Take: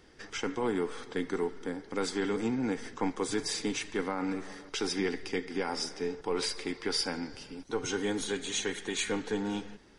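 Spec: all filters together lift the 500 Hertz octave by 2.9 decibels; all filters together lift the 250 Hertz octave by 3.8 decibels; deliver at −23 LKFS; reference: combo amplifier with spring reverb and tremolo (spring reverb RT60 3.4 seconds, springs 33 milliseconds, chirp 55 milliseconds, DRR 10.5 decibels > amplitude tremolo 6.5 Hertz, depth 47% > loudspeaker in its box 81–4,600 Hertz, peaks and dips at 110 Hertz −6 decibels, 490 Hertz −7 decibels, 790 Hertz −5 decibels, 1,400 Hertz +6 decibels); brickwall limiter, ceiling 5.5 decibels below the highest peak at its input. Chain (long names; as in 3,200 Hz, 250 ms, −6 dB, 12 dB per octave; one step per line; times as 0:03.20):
parametric band 250 Hz +3 dB
parametric band 500 Hz +7 dB
brickwall limiter −20 dBFS
spring reverb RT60 3.4 s, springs 33 ms, chirp 55 ms, DRR 10.5 dB
amplitude tremolo 6.5 Hz, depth 47%
loudspeaker in its box 81–4,600 Hz, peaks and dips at 110 Hz −6 dB, 490 Hz −7 dB, 790 Hz −5 dB, 1,400 Hz +6 dB
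level +12 dB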